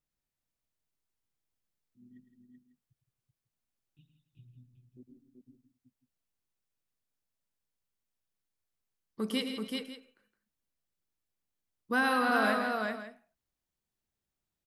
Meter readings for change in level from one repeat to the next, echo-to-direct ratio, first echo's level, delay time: no steady repeat, -2.0 dB, -9.5 dB, 0.107 s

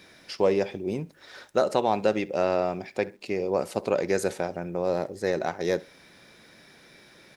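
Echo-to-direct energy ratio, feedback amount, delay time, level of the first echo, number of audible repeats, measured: -21.5 dB, 28%, 66 ms, -22.0 dB, 2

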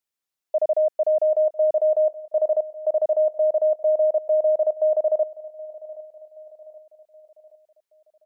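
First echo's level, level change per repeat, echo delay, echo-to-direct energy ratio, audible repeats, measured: -19.0 dB, -6.5 dB, 0.774 s, -18.0 dB, 3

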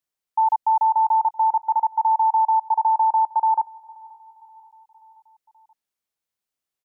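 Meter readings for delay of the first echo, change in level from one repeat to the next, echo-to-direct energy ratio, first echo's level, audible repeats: 0.529 s, -5.0 dB, -21.5 dB, -23.0 dB, 3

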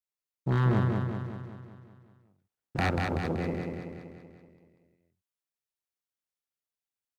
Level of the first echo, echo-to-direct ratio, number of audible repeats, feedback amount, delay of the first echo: -3.5 dB, -2.0 dB, 7, 56%, 0.19 s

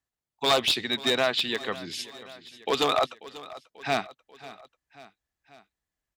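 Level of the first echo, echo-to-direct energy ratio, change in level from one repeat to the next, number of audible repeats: -18.0 dB, -16.5 dB, -4.5 dB, 3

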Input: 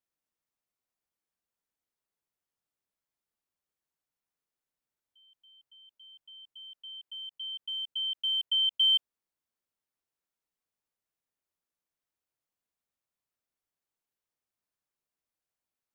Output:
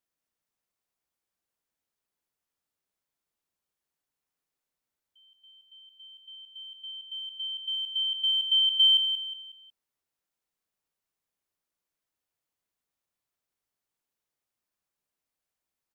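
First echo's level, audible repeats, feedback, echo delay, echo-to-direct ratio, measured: -8.0 dB, 4, 39%, 0.182 s, -7.5 dB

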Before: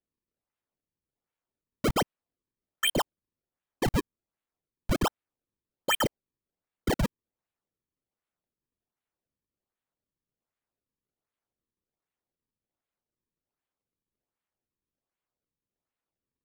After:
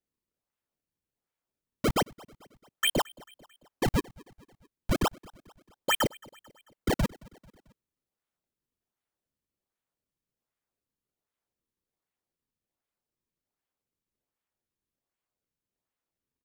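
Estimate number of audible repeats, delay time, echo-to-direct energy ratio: 3, 0.221 s, -22.5 dB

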